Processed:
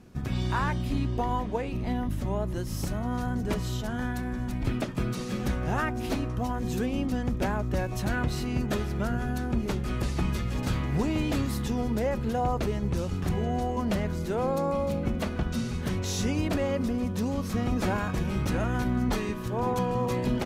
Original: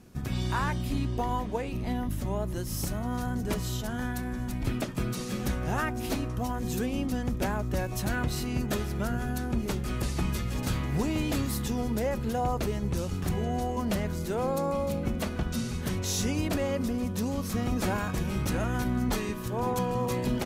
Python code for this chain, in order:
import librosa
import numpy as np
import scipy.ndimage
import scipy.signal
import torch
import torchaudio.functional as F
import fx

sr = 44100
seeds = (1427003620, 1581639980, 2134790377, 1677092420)

y = fx.high_shelf(x, sr, hz=6600.0, db=-10.0)
y = y * 10.0 ** (1.5 / 20.0)